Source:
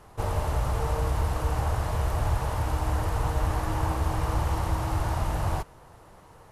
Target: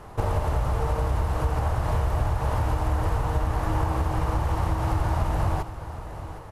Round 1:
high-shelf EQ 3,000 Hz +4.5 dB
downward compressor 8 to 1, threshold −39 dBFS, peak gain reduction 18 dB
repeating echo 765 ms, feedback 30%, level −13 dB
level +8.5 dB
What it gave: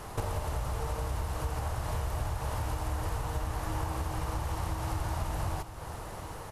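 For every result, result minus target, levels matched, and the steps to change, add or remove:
8,000 Hz band +10.0 dB; downward compressor: peak gain reduction +9 dB
change: high-shelf EQ 3,000 Hz −7 dB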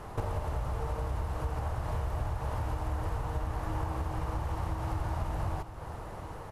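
downward compressor: peak gain reduction +9 dB
change: downward compressor 8 to 1, threshold −29 dBFS, peak gain reduction 9 dB

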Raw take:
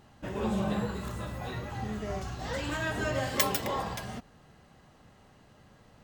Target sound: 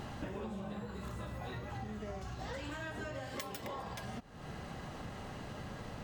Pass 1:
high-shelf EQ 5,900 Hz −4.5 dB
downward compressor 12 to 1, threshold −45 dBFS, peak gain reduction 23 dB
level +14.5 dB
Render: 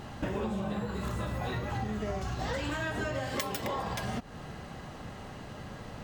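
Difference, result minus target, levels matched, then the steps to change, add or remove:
downward compressor: peak gain reduction −8.5 dB
change: downward compressor 12 to 1, threshold −54.5 dBFS, peak gain reduction 31.5 dB

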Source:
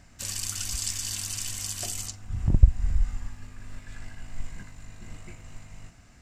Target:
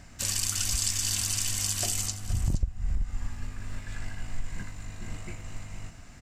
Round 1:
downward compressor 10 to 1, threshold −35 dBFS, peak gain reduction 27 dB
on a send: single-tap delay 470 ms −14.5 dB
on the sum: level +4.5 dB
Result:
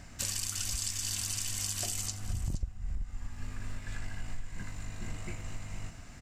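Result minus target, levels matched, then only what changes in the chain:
downward compressor: peak gain reduction +7 dB
change: downward compressor 10 to 1, threshold −27 dBFS, peak gain reduction 20 dB

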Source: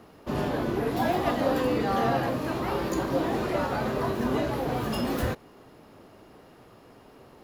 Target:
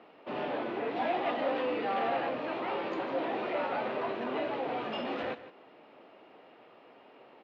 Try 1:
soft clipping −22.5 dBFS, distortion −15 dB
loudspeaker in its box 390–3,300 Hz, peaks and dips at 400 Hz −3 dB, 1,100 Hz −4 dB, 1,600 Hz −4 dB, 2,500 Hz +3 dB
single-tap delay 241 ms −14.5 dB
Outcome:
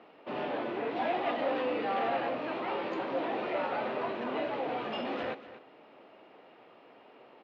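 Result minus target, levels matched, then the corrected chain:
echo 85 ms late
soft clipping −22.5 dBFS, distortion −15 dB
loudspeaker in its box 390–3,300 Hz, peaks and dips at 400 Hz −3 dB, 1,100 Hz −4 dB, 1,600 Hz −4 dB, 2,500 Hz +3 dB
single-tap delay 156 ms −14.5 dB

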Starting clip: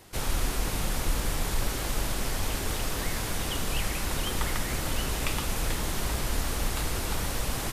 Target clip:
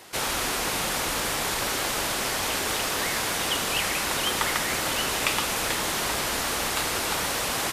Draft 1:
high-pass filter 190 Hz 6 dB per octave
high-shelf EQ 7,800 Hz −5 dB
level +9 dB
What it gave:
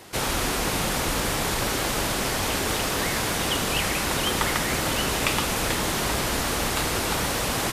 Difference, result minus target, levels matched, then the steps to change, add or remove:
250 Hz band +5.0 dB
change: high-pass filter 600 Hz 6 dB per octave

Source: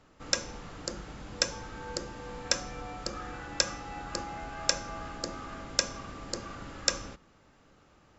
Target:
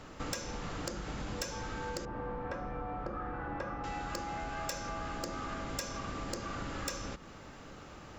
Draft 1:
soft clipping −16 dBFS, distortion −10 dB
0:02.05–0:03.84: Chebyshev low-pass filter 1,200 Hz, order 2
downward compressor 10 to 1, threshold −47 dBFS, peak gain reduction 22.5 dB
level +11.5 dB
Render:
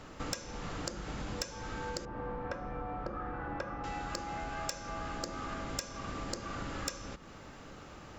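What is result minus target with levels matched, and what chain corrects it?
soft clipping: distortion −7 dB
soft clipping −27 dBFS, distortion −3 dB
0:02.05–0:03.84: Chebyshev low-pass filter 1,200 Hz, order 2
downward compressor 10 to 1, threshold −47 dBFS, peak gain reduction 16 dB
level +11.5 dB

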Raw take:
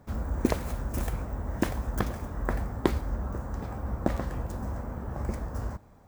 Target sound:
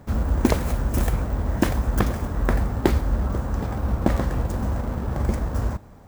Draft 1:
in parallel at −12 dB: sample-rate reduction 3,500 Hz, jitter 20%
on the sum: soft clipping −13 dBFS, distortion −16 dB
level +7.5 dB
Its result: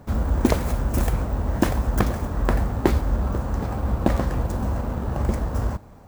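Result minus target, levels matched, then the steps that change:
sample-rate reduction: distortion −6 dB
change: sample-rate reduction 1,300 Hz, jitter 20%

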